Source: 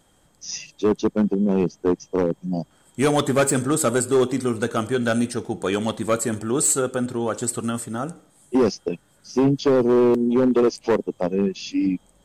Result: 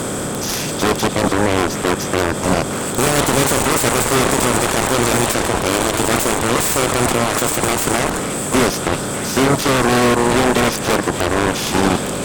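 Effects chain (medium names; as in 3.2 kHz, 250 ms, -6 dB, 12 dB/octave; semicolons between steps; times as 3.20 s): spectral levelling over time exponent 0.4; peak limiter -11 dBFS, peak gain reduction 9.5 dB; peaking EQ 74 Hz +6.5 dB 2 oct; Chebyshev shaper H 7 -6 dB, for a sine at -8 dBFS; on a send: repeats whose band climbs or falls 296 ms, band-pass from 3.4 kHz, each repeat -0.7 oct, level -8 dB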